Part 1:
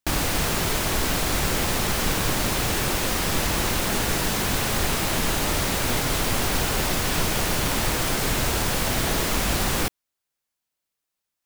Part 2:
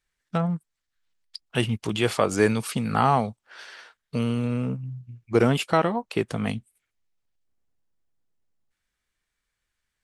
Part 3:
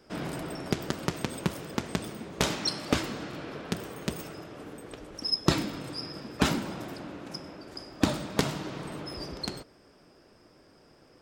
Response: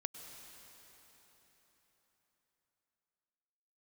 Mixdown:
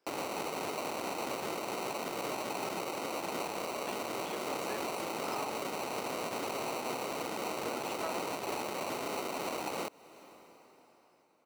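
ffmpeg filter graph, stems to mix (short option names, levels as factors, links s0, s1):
-filter_complex "[0:a]acrusher=samples=26:mix=1:aa=0.000001,volume=1.12,asplit=2[s0][s1];[s1]volume=0.158[s2];[1:a]adelay=2300,volume=0.335[s3];[2:a]volume=0.141[s4];[3:a]atrim=start_sample=2205[s5];[s2][s5]afir=irnorm=-1:irlink=0[s6];[s0][s3][s4][s6]amix=inputs=4:normalize=0,highpass=350,alimiter=level_in=1.06:limit=0.0631:level=0:latency=1:release=332,volume=0.944"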